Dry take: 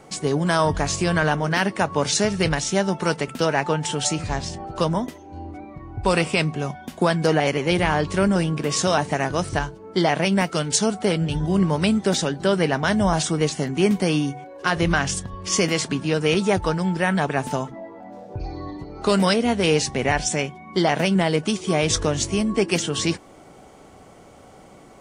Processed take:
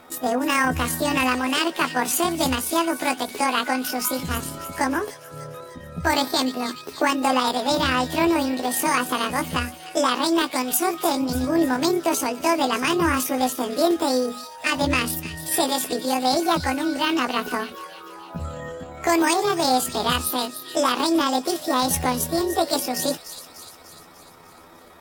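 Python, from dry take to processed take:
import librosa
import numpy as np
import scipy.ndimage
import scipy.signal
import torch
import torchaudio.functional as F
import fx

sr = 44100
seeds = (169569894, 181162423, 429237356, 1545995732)

y = fx.pitch_heads(x, sr, semitones=9.0)
y = fx.echo_wet_highpass(y, sr, ms=298, feedback_pct=58, hz=2800.0, wet_db=-10.5)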